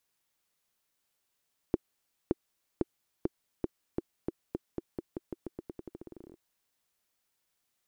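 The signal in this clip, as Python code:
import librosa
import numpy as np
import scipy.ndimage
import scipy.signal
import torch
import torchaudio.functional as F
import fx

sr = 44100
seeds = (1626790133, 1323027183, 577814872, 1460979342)

y = fx.bouncing_ball(sr, first_gap_s=0.57, ratio=0.88, hz=346.0, decay_ms=28.0, level_db=-13.0)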